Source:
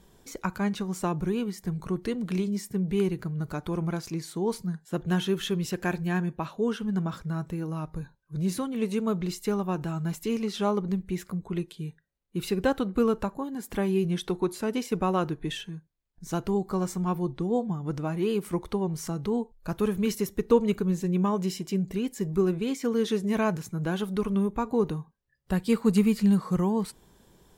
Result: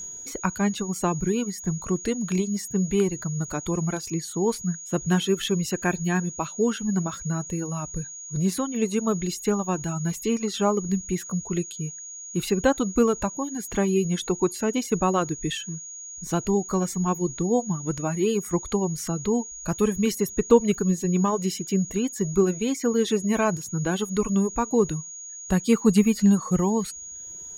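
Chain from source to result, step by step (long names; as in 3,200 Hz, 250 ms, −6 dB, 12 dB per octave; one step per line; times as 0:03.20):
steady tone 6,700 Hz −38 dBFS
reverb reduction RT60 0.81 s
level +4.5 dB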